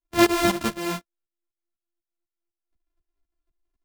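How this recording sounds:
a buzz of ramps at a fixed pitch in blocks of 128 samples
tremolo saw up 4 Hz, depth 85%
a shimmering, thickened sound

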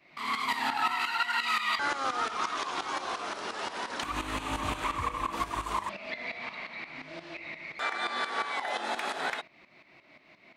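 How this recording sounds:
tremolo saw up 5.7 Hz, depth 75%

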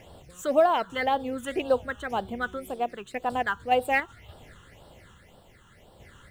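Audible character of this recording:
sample-and-hold tremolo
a quantiser's noise floor 12 bits, dither none
phaser sweep stages 8, 1.9 Hz, lowest notch 640–2,100 Hz
IMA ADPCM

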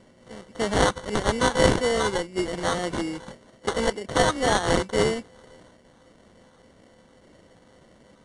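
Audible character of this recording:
a buzz of ramps at a fixed pitch in blocks of 8 samples
phaser sweep stages 6, 1.8 Hz, lowest notch 750–1,500 Hz
aliases and images of a low sample rate 2,500 Hz, jitter 0%
AAC

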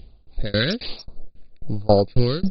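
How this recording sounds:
a buzz of ramps at a fixed pitch in blocks of 8 samples
tremolo saw down 3.7 Hz, depth 100%
phaser sweep stages 2, 1.2 Hz, lowest notch 780–1,800 Hz
MP2

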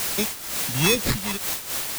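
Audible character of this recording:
aliases and images of a low sample rate 3,000 Hz, jitter 0%
phaser sweep stages 2, 2.2 Hz, lowest notch 340–1,100 Hz
a quantiser's noise floor 6 bits, dither triangular
amplitude modulation by smooth noise

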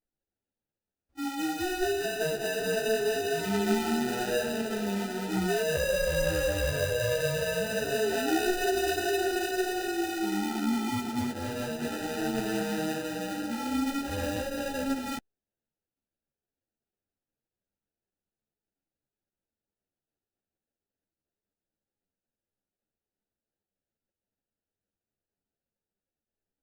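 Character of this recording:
aliases and images of a low sample rate 1,100 Hz, jitter 0%
a shimmering, thickened sound

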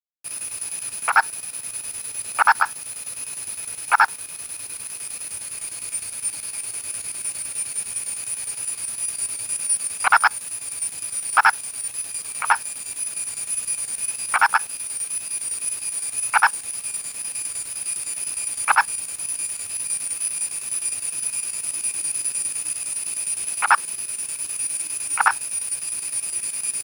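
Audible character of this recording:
a quantiser's noise floor 6 bits, dither none
chopped level 9.8 Hz, depth 60%, duty 75%

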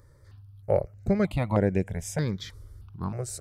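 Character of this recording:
notches that jump at a steady rate 3.2 Hz 730–4,400 Hz

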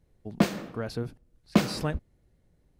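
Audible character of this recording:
background noise floor −68 dBFS
spectral slope −5.5 dB per octave

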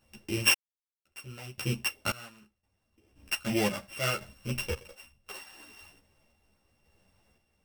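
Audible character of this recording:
a buzz of ramps at a fixed pitch in blocks of 16 samples
sample-and-hold tremolo 1.9 Hz, depth 100%
a shimmering, thickened sound

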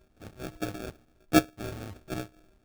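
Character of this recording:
a buzz of ramps at a fixed pitch in blocks of 64 samples
phaser sweep stages 4, 1.2 Hz, lowest notch 270–1,200 Hz
aliases and images of a low sample rate 1,000 Hz, jitter 0%
amplitude modulation by smooth noise

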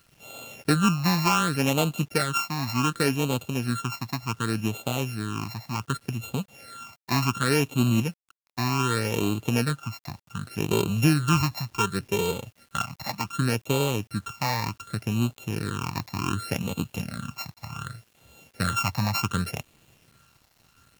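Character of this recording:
a buzz of ramps at a fixed pitch in blocks of 32 samples
phaser sweep stages 8, 0.67 Hz, lowest notch 410–1,700 Hz
a quantiser's noise floor 10 bits, dither none
AAC

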